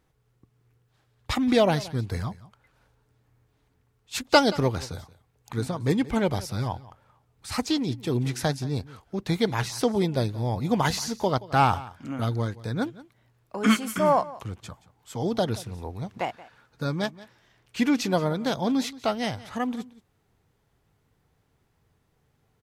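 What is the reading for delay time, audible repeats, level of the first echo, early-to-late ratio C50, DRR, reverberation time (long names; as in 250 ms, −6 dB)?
177 ms, 1, −19.0 dB, no reverb audible, no reverb audible, no reverb audible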